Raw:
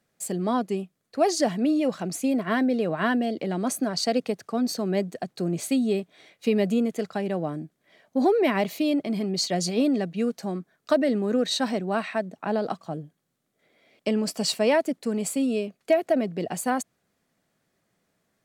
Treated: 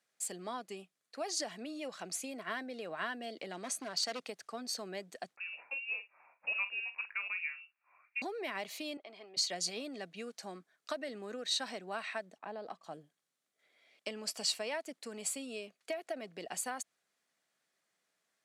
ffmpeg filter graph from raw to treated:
ffmpeg -i in.wav -filter_complex "[0:a]asettb=1/sr,asplit=3[link_01][link_02][link_03];[link_01]atrim=end=3.534[link_04];[link_02]atrim=start=3.53:end=4.22,asetpts=PTS-STARTPTS,afade=type=in:duration=0.004:curve=qsin,afade=type=out:start_time=0.686:duration=0.004:curve=qsin,lowpass=10000,asoftclip=type=hard:threshold=-22dB[link_05];[link_03]atrim=start=4.216[link_06];[link_04][link_05]acrossfade=duration=0.004:curve1=hsin:curve2=qsin[link_07];[link_07][link_06]acrossfade=duration=0.004:curve1=qsin:curve2=hsin,asettb=1/sr,asplit=3[link_08][link_09][link_10];[link_08]atrim=end=5.364[link_11];[link_09]atrim=start=5.36:end=8.22,asetpts=PTS-STARTPTS,afade=type=in:duration=0.004:curve=qsin,afade=type=out:start_time=2.856:duration=0.004:curve=qsin,highpass=640,asplit=2[link_12][link_13];[link_13]adelay=45,volume=-12.5dB[link_14];[link_12][link_14]amix=inputs=2:normalize=0,atrim=end_sample=126126,lowpass=frequency=2600:width_type=q:width=0.5098,lowpass=frequency=2600:width_type=q:width=0.6013,lowpass=frequency=2600:width_type=q:width=0.9,lowpass=frequency=2600:width_type=q:width=2.563,afreqshift=-3000[link_15];[link_10]atrim=start=8.216[link_16];[link_11][link_15]acrossfade=duration=0.004:curve1=hsin:curve2=qsin[link_17];[link_17][link_16]acrossfade=duration=0.004:curve1=qsin:curve2=hsin,asettb=1/sr,asplit=3[link_18][link_19][link_20];[link_18]atrim=end=8.974[link_21];[link_19]atrim=start=8.97:end=9.37,asetpts=PTS-STARTPTS,afade=type=in:duration=0.004:curve=qsin,afade=type=out:start_time=0.396:duration=0.004:curve=qsin,highpass=610,lowpass=2700,equalizer=frequency=1700:width=1.1:gain=-7[link_22];[link_20]atrim=start=9.366[link_23];[link_21][link_22]acrossfade=duration=0.004:curve1=hsin:curve2=qsin[link_24];[link_24][link_23]acrossfade=duration=0.004:curve1=qsin:curve2=hsin,asettb=1/sr,asplit=3[link_25][link_26][link_27];[link_25]atrim=end=12.384[link_28];[link_26]atrim=start=12.38:end=12.84,asetpts=PTS-STARTPTS,afade=type=in:duration=0.004:curve=qsin,afade=type=out:start_time=0.456:duration=0.004:curve=qsin,highshelf=frequency=2300:gain=-11.5,bandreject=frequency=1400:width=7.1,acompressor=threshold=-32dB:ratio=1.5:attack=3.2:release=140:knee=1:detection=peak[link_29];[link_27]atrim=start=12.836[link_30];[link_28][link_29]acrossfade=duration=0.004:curve1=hsin:curve2=qsin[link_31];[link_31][link_30]acrossfade=duration=0.004:curve1=qsin:curve2=hsin,lowpass=11000,acompressor=threshold=-24dB:ratio=6,highpass=frequency=1500:poles=1,volume=-3dB" out.wav

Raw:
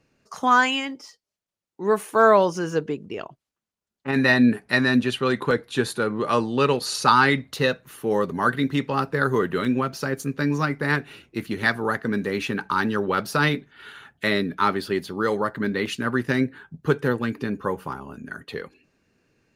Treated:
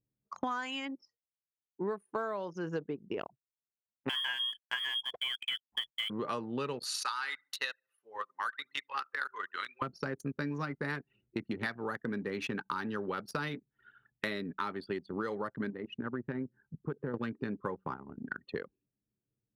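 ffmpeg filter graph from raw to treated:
ffmpeg -i in.wav -filter_complex "[0:a]asettb=1/sr,asplit=3[link_01][link_02][link_03];[link_01]atrim=end=4.094[link_04];[link_02]atrim=start=4.09:end=6.1,asetpts=PTS-STARTPTS,afade=type=in:duration=0.004:curve=qsin,afade=type=out:start_time=2.006:duration=0.004:curve=qsin,lowpass=frequency=3000:width_type=q:width=0.5098,lowpass=frequency=3000:width_type=q:width=0.6013,lowpass=frequency=3000:width_type=q:width=0.9,lowpass=frequency=3000:width_type=q:width=2.563,afreqshift=-3500,aeval=exprs='sgn(val(0))*max(abs(val(0))-0.0112,0)':channel_layout=same[link_05];[link_03]atrim=start=6.096[link_06];[link_04][link_05]acrossfade=duration=0.004:curve1=hsin:curve2=qsin[link_07];[link_07][link_06]acrossfade=duration=0.004:curve1=qsin:curve2=hsin,asettb=1/sr,asplit=3[link_08][link_09][link_10];[link_08]atrim=end=6.844[link_11];[link_09]atrim=start=6.84:end=9.82,asetpts=PTS-STARTPTS,afade=type=in:duration=0.004:curve=qsin,afade=type=out:start_time=2.976:duration=0.004:curve=qsin,highpass=1400,aecho=1:1:71|142|213|284:0.112|0.0606|0.0327|0.0177,atrim=end_sample=131418[link_12];[link_10]atrim=start=9.816[link_13];[link_11][link_12]acrossfade=duration=0.004:curve1=hsin:curve2=qsin[link_14];[link_14][link_13]acrossfade=duration=0.004:curve1=qsin:curve2=hsin,asettb=1/sr,asplit=3[link_15][link_16][link_17];[link_15]atrim=end=15.704[link_18];[link_16]atrim=start=15.7:end=17.14,asetpts=PTS-STARTPTS,afade=type=in:duration=0.004:curve=qsin,afade=type=out:start_time=1.436:duration=0.004:curve=qsin,lowpass=frequency=1600:poles=1,acompressor=threshold=-35dB:ratio=2:attack=3.2:release=140:knee=1:detection=peak[link_19];[link_17]atrim=start=17.136[link_20];[link_18][link_19]acrossfade=duration=0.004:curve1=hsin:curve2=qsin[link_21];[link_21][link_20]acrossfade=duration=0.004:curve1=qsin:curve2=hsin,anlmdn=25.1,highpass=91,acompressor=threshold=-32dB:ratio=16" out.wav

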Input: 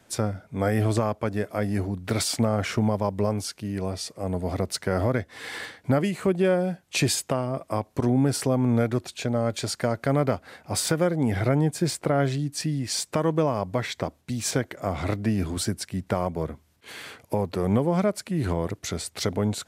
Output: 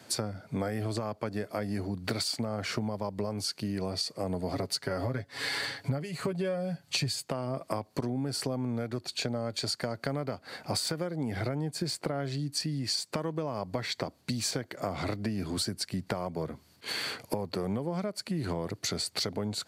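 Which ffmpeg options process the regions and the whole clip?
ffmpeg -i in.wav -filter_complex "[0:a]asettb=1/sr,asplit=3[link_01][link_02][link_03];[link_01]atrim=end=4.534[link_04];[link_02]atrim=start=4.53:end=7.25,asetpts=PTS-STARTPTS,afade=type=in:duration=0.004:curve=qsin,afade=type=out:start_time=2.716:duration=0.004:curve=qsin,aecho=1:1:7.2:0.68,atrim=end_sample=119952,asubboost=boost=5:cutoff=140[link_05];[link_03]atrim=start=7.246[link_06];[link_04][link_05]acrossfade=duration=0.004:curve1=hsin:curve2=qsin[link_07];[link_07][link_06]acrossfade=duration=0.004:curve1=qsin:curve2=hsin,highpass=frequency=97:width=0.5412,highpass=frequency=97:width=1.3066,equalizer=frequency=4500:width=7.4:gain=12.5,acompressor=threshold=-34dB:ratio=10,volume=5dB" out.wav

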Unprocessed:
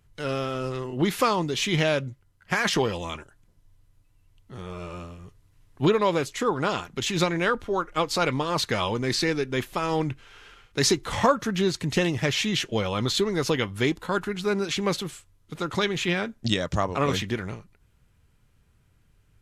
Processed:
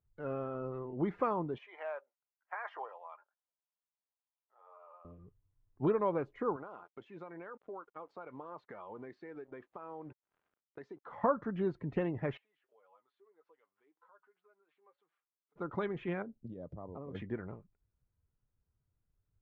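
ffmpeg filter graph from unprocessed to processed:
ffmpeg -i in.wav -filter_complex "[0:a]asettb=1/sr,asplit=3[link_01][link_02][link_03];[link_01]atrim=end=1.584[link_04];[link_02]atrim=start=1.58:end=5.05,asetpts=PTS-STARTPTS,afade=type=in:duration=0.004:curve=qsin,afade=type=out:start_time=3.466:duration=0.004:curve=qsin,highpass=frequency=700:width=0.5412,highpass=frequency=700:width=1.3066,highshelf=frequency=2200:gain=-9[link_05];[link_03]atrim=start=5.046[link_06];[link_04][link_05]acrossfade=duration=0.004:curve1=hsin:curve2=qsin[link_07];[link_07][link_06]acrossfade=duration=0.004:curve1=qsin:curve2=hsin,asettb=1/sr,asplit=3[link_08][link_09][link_10];[link_08]atrim=end=6.564[link_11];[link_09]atrim=start=6.56:end=11.24,asetpts=PTS-STARTPTS,afade=type=in:duration=0.004:curve=qsin,afade=type=out:start_time=4.676:duration=0.004:curve=qsin,highpass=frequency=540:poles=1,acrusher=bits=6:mix=0:aa=0.5,acompressor=threshold=-32dB:ratio=6:attack=3.2:release=140:knee=1:detection=peak[link_12];[link_10]atrim=start=11.236[link_13];[link_11][link_12]acrossfade=duration=0.004:curve1=hsin:curve2=qsin[link_14];[link_14][link_13]acrossfade=duration=0.004:curve1=qsin:curve2=hsin,asettb=1/sr,asplit=3[link_15][link_16][link_17];[link_15]atrim=end=12.374[link_18];[link_16]atrim=start=12.37:end=15.56,asetpts=PTS-STARTPTS,afade=type=in:duration=0.004:curve=qsin,afade=type=out:start_time=3.186:duration=0.004:curve=qsin,acompressor=threshold=-39dB:ratio=6:attack=3.2:release=140:knee=1:detection=peak,flanger=delay=5.8:depth=2:regen=47:speed=1.8:shape=triangular,highpass=770,lowpass=3600[link_19];[link_17]atrim=start=15.556[link_20];[link_18][link_19]acrossfade=duration=0.004:curve1=hsin:curve2=qsin[link_21];[link_21][link_20]acrossfade=duration=0.004:curve1=qsin:curve2=hsin,asettb=1/sr,asplit=3[link_22][link_23][link_24];[link_22]atrim=end=16.224[link_25];[link_23]atrim=start=16.22:end=17.15,asetpts=PTS-STARTPTS,afade=type=in:duration=0.004:curve=qsin,afade=type=out:start_time=0.926:duration=0.004:curve=qsin,equalizer=frequency=1900:width_type=o:width=2.5:gain=-12.5,acompressor=threshold=-30dB:ratio=10:attack=3.2:release=140:knee=1:detection=peak[link_26];[link_24]atrim=start=17.146[link_27];[link_25][link_26]acrossfade=duration=0.004:curve1=hsin:curve2=qsin[link_28];[link_28][link_27]acrossfade=duration=0.004:curve1=qsin:curve2=hsin,lowpass=1200,afftdn=noise_reduction=12:noise_floor=-46,lowshelf=frequency=130:gain=-7.5,volume=-8dB" out.wav

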